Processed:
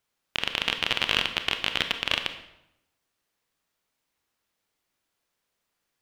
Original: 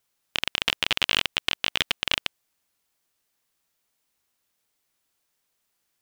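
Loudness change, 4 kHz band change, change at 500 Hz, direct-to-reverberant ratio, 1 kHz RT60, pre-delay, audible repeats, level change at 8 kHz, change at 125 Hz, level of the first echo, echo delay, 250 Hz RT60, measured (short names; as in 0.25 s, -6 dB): -1.5 dB, -1.5 dB, +1.0 dB, 7.0 dB, 0.80 s, 26 ms, none, -5.0 dB, +0.5 dB, none, none, 0.95 s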